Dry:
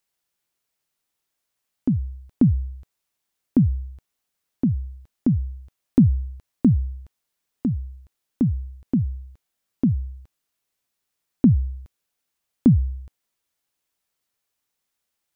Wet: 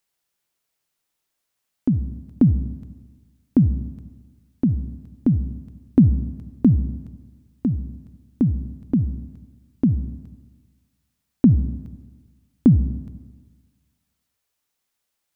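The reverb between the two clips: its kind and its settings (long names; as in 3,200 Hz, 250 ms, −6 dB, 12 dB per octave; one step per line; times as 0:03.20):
comb and all-pass reverb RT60 1.4 s, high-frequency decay 0.9×, pre-delay 15 ms, DRR 13.5 dB
level +1.5 dB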